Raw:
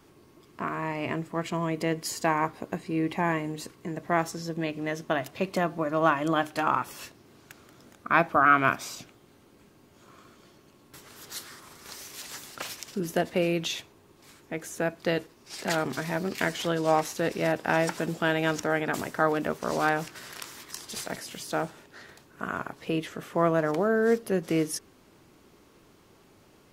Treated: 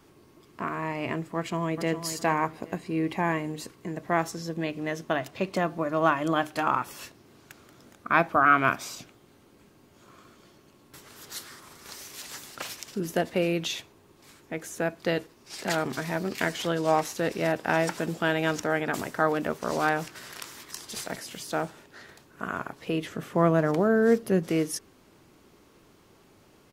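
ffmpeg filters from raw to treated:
ffmpeg -i in.wav -filter_complex "[0:a]asplit=2[link_01][link_02];[link_02]afade=type=in:start_time=1.36:duration=0.01,afade=type=out:start_time=2.02:duration=0.01,aecho=0:1:410|820|1230:0.334965|0.0837414|0.0209353[link_03];[link_01][link_03]amix=inputs=2:normalize=0,asettb=1/sr,asplit=3[link_04][link_05][link_06];[link_04]atrim=end=5.174[link_07];[link_05]atrim=start=5.17:end=5.64,asetpts=PTS-STARTPTS,afade=type=in:duration=0.004:curve=qsin,afade=type=out:start_time=0.466:duration=0.004:curve=qsin,equalizer=frequency=12000:width=1.5:gain=-5.5[link_08];[link_06]atrim=start=5.636[link_09];[link_07][link_08]acrossfade=duration=0.004:curve1=hsin:curve2=qsin[link_10];[link_10][link_09]acrossfade=duration=0.004:curve1=qsin:curve2=hsin,asettb=1/sr,asplit=3[link_11][link_12][link_13];[link_11]atrim=end=23.024[link_14];[link_12]atrim=start=23.02:end=24.49,asetpts=PTS-STARTPTS,afade=type=in:duration=0.004:curve=qsin,afade=type=out:start_time=1.466:duration=0.004:curve=qsin,equalizer=frequency=140:width_type=o:width=2.2:gain=6[link_15];[link_13]atrim=start=24.486[link_16];[link_14][link_15]acrossfade=duration=0.004:curve1=hsin:curve2=qsin[link_17];[link_17][link_16]acrossfade=duration=0.004:curve1=qsin:curve2=hsin" out.wav

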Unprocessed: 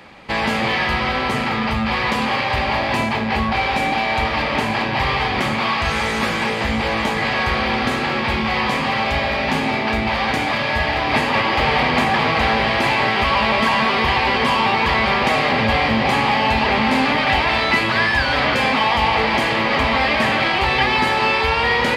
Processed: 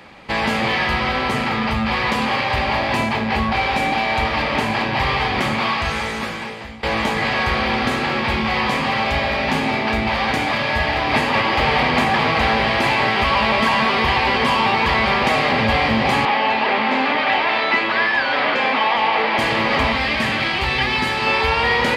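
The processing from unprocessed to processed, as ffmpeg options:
ffmpeg -i in.wav -filter_complex "[0:a]asettb=1/sr,asplit=3[link_01][link_02][link_03];[link_01]atrim=end=16.254[link_04];[link_02]atrim=start=16.25:end=19.39,asetpts=PTS-STARTPTS,afade=type=in:duration=0.004:curve=qsin,afade=type=out:start_time=3.136:duration=0.004:curve=qsin,highpass=290,lowpass=3700[link_05];[link_03]atrim=start=19.386[link_06];[link_04][link_05]acrossfade=duration=0.004:curve1=hsin:curve2=qsin[link_07];[link_07][link_06]acrossfade=duration=0.004:curve1=qsin:curve2=hsin,asettb=1/sr,asplit=3[link_08][link_09][link_10];[link_08]atrim=end=19.924[link_11];[link_09]atrim=start=19.92:end=21.27,asetpts=PTS-STARTPTS,afade=type=in:duration=0.004:curve=qsin,afade=type=out:start_time=1.346:duration=0.004:curve=qsin,equalizer=frequency=700:width=0.66:gain=-6[link_12];[link_10]atrim=start=21.266[link_13];[link_11][link_12]acrossfade=duration=0.004:curve1=hsin:curve2=qsin[link_14];[link_14][link_13]acrossfade=duration=0.004:curve1=qsin:curve2=hsin,asplit=2[link_15][link_16];[link_15]atrim=end=6.83,asetpts=PTS-STARTPTS,afade=type=out:start_time=5.63:duration=1.2:silence=0.0944061[link_17];[link_16]atrim=start=6.83,asetpts=PTS-STARTPTS,afade=type=in:duration=0.004:curve=hsin:silence=0.0944061[link_18];[link_17][link_18]concat=n=2:v=0:a=1" out.wav

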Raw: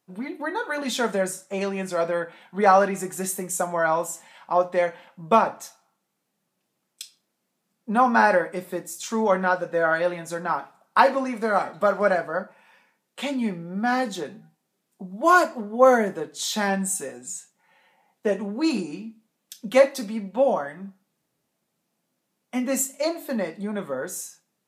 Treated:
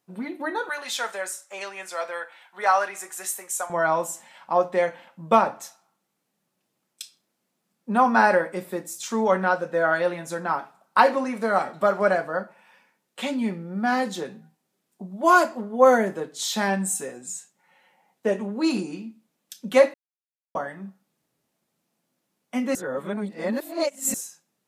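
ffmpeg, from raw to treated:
ffmpeg -i in.wav -filter_complex "[0:a]asettb=1/sr,asplit=3[link_01][link_02][link_03];[link_01]atrim=end=0.694[link_04];[link_02]atrim=start=0.69:end=3.7,asetpts=PTS-STARTPTS,afade=type=in:duration=0.004:curve=qsin,afade=type=out:start_time=3.006:duration=0.004:curve=qsin,highpass=870[link_05];[link_03]atrim=start=3.696[link_06];[link_04][link_05]acrossfade=duration=0.004:curve1=hsin:curve2=qsin[link_07];[link_07][link_06]acrossfade=duration=0.004:curve1=qsin:curve2=hsin,asplit=5[link_08][link_09][link_10][link_11][link_12];[link_08]atrim=end=19.94,asetpts=PTS-STARTPTS,afade=type=out:start_time=19.936:duration=0.004:curve=hsin[link_13];[link_09]atrim=start=19.94:end=20.55,asetpts=PTS-STARTPTS,volume=0[link_14];[link_10]atrim=start=20.55:end=22.752,asetpts=PTS-STARTPTS,afade=type=in:duration=0.004:curve=hsin[link_15];[link_11]atrim=start=22.748:end=24.142,asetpts=PTS-STARTPTS,areverse[link_16];[link_12]atrim=start=24.138[link_17];[link_13][link_14][link_15]concat=n=3:v=0:a=1[link_18];[link_18][link_16]acrossfade=duration=0.004:curve1=hsin:curve2=hsin[link_19];[link_19][link_17]acrossfade=duration=0.004:curve1=hsin:curve2=hsin" out.wav

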